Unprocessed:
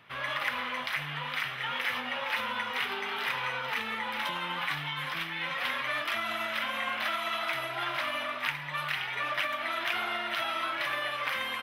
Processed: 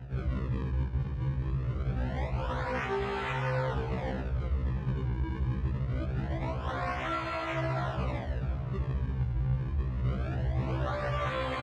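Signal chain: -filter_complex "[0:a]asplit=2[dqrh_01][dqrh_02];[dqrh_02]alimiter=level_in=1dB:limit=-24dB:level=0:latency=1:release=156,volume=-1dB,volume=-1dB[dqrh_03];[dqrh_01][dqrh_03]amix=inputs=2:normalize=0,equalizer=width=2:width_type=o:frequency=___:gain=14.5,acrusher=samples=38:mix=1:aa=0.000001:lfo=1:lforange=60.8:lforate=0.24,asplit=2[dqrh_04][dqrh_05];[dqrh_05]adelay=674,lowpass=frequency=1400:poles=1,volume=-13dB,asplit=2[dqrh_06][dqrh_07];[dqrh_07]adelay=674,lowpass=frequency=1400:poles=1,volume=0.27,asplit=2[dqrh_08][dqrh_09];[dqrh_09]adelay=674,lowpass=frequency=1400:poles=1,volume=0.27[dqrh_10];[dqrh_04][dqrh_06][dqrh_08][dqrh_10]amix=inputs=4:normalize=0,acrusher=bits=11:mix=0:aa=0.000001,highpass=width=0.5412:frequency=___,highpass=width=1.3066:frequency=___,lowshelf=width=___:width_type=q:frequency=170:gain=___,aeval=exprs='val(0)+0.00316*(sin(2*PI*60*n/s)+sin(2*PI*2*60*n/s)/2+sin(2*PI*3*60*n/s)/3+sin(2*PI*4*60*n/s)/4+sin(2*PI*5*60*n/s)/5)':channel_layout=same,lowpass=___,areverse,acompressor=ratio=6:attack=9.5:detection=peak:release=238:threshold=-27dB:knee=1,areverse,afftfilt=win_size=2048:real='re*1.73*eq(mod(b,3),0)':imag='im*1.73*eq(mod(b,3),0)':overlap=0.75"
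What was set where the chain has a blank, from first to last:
360, 45, 45, 1.5, 13, 2400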